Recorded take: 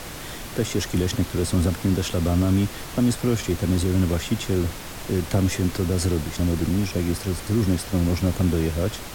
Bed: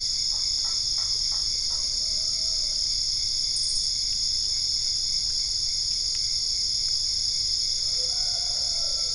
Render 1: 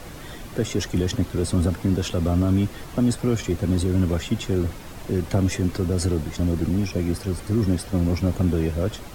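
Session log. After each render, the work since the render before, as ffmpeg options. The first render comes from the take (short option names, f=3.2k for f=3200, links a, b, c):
-af "afftdn=nr=8:nf=-36"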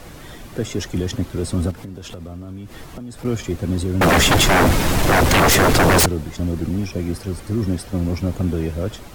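-filter_complex "[0:a]asettb=1/sr,asplit=3[a][b][c];[a]atrim=end=1.714[d];[b]atrim=start=1.71:end=3.25,asetpts=PTS-STARTPTS,afade=t=in:d=0.004:c=qsin,afade=t=out:st=1.536:d=0.004:c=qsin,acompressor=threshold=-29dB:ratio=10:attack=3.2:release=140:knee=1:detection=peak[e];[c]atrim=start=3.246[f];[d][e]acrossfade=d=0.004:c1=hsin:c2=qsin[g];[g][f]acrossfade=d=0.004:c1=qsin:c2=hsin,asettb=1/sr,asplit=3[h][i][j];[h]atrim=end=4.014[k];[i]atrim=start=4.01:end=6.06,asetpts=PTS-STARTPTS,afade=t=in:d=0.004:c=qsin,afade=t=out:st=2.046:d=0.004:c=qsin,aeval=exprs='0.316*sin(PI/2*7.94*val(0)/0.316)':c=same[l];[j]atrim=start=6.056[m];[k][l]acrossfade=d=0.004:c1=hsin:c2=qsin[n];[n][m]acrossfade=d=0.004:c1=qsin:c2=hsin"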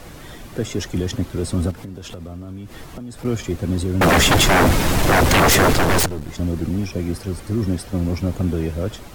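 -filter_complex "[0:a]asettb=1/sr,asplit=3[a][b][c];[a]atrim=end=5.744[d];[b]atrim=start=5.74:end=6.29,asetpts=PTS-STARTPTS,afade=t=in:d=0.004:c=qsin,afade=t=out:st=0.546:d=0.004:c=qsin,aeval=exprs='if(lt(val(0),0),0.251*val(0),val(0))':c=same[e];[c]atrim=start=6.286[f];[d][e]acrossfade=d=0.004:c1=hsin:c2=qsin[g];[g][f]acrossfade=d=0.004:c1=qsin:c2=hsin"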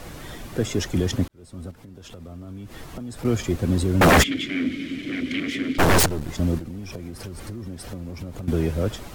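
-filter_complex "[0:a]asplit=3[a][b][c];[a]afade=t=out:st=4.22:d=0.02[d];[b]asplit=3[e][f][g];[e]bandpass=f=270:t=q:w=8,volume=0dB[h];[f]bandpass=f=2.29k:t=q:w=8,volume=-6dB[i];[g]bandpass=f=3.01k:t=q:w=8,volume=-9dB[j];[h][i][j]amix=inputs=3:normalize=0,afade=t=in:st=4.22:d=0.02,afade=t=out:st=5.78:d=0.02[k];[c]afade=t=in:st=5.78:d=0.02[l];[d][k][l]amix=inputs=3:normalize=0,asettb=1/sr,asplit=3[m][n][o];[m]atrim=end=6.584[p];[n]atrim=start=6.58:end=8.48,asetpts=PTS-STARTPTS,afade=t=in:d=0.004:c=qsin,afade=t=out:st=1.896:d=0.004:c=qsin,acompressor=threshold=-30dB:ratio=10:attack=3.2:release=140:knee=1:detection=peak[q];[o]atrim=start=8.476[r];[p][q]acrossfade=d=0.004:c1=hsin:c2=qsin[s];[s][r]acrossfade=d=0.004:c1=qsin:c2=hsin,asplit=2[t][u];[t]atrim=end=1.28,asetpts=PTS-STARTPTS,afade=t=out:st=1.276:d=0.004:c=hsin[v];[u]atrim=start=1.28,asetpts=PTS-STARTPTS,afade=t=in:d=1.99[w];[v][w]concat=n=2:v=0:a=1"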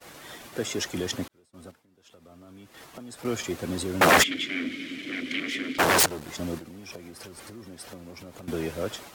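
-af "agate=range=-33dB:threshold=-34dB:ratio=3:detection=peak,highpass=f=580:p=1"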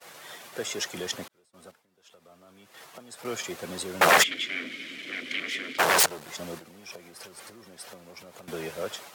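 -af "highpass=200,equalizer=f=280:w=2:g=-11"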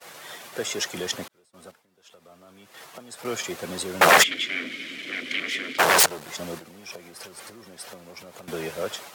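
-af "volume=3.5dB"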